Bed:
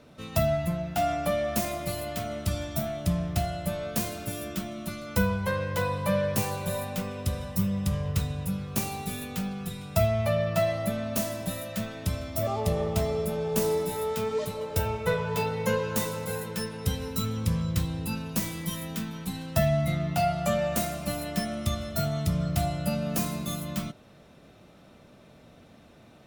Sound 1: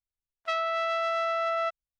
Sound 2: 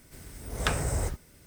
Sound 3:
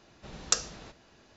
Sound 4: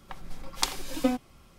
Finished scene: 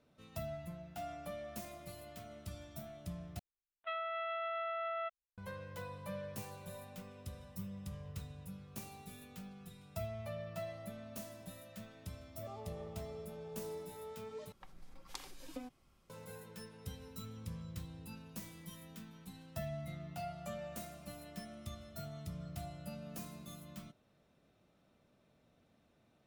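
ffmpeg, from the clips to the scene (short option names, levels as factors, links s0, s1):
-filter_complex "[0:a]volume=0.126[s0];[1:a]aresample=8000,aresample=44100[s1];[4:a]acompressor=threshold=0.0158:ratio=2:attack=25:release=81:knee=1:detection=peak[s2];[s0]asplit=3[s3][s4][s5];[s3]atrim=end=3.394[s6];[s1]atrim=end=1.99,asetpts=PTS-STARTPTS,volume=0.282[s7];[s4]atrim=start=5.376:end=14.524[s8];[s2]atrim=end=1.58,asetpts=PTS-STARTPTS,volume=0.188[s9];[s5]atrim=start=16.096[s10];[s6][s7]acrossfade=d=0.004:c1=hsin:c2=hsin[s11];[s11][s8]acrossfade=d=0.004:c1=hsin:c2=hsin[s12];[s12][s9]acrossfade=d=0.004:c1=hsin:c2=hsin[s13];[s13][s10]acrossfade=d=0.004:c1=hsin:c2=hsin"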